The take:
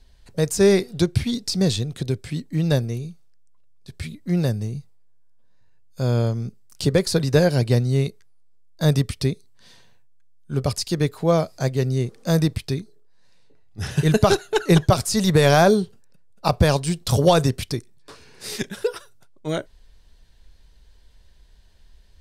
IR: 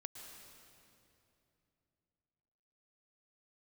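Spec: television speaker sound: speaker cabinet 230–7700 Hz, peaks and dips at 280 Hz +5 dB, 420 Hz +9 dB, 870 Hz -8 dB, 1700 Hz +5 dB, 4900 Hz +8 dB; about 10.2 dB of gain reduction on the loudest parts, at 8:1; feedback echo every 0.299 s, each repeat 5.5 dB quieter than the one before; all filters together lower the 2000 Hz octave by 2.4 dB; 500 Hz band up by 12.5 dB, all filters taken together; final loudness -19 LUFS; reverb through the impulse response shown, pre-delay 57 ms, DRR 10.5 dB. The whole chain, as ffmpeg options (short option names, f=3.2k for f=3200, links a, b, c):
-filter_complex "[0:a]equalizer=f=500:t=o:g=9,equalizer=f=2k:t=o:g=-8,acompressor=threshold=-16dB:ratio=8,aecho=1:1:299|598|897|1196|1495|1794|2093:0.531|0.281|0.149|0.079|0.0419|0.0222|0.0118,asplit=2[a][b];[1:a]atrim=start_sample=2205,adelay=57[c];[b][c]afir=irnorm=-1:irlink=0,volume=-6.5dB[d];[a][d]amix=inputs=2:normalize=0,highpass=f=230:w=0.5412,highpass=f=230:w=1.3066,equalizer=f=280:t=q:w=4:g=5,equalizer=f=420:t=q:w=4:g=9,equalizer=f=870:t=q:w=4:g=-8,equalizer=f=1.7k:t=q:w=4:g=5,equalizer=f=4.9k:t=q:w=4:g=8,lowpass=f=7.7k:w=0.5412,lowpass=f=7.7k:w=1.3066"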